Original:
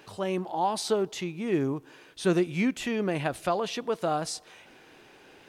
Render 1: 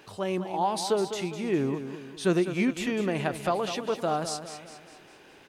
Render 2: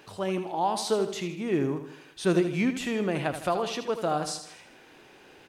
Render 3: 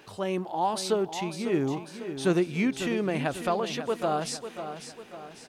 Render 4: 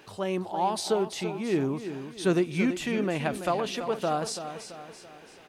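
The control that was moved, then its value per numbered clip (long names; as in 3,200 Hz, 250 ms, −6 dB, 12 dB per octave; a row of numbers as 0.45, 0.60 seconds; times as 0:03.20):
repeating echo, delay time: 203, 79, 547, 334 milliseconds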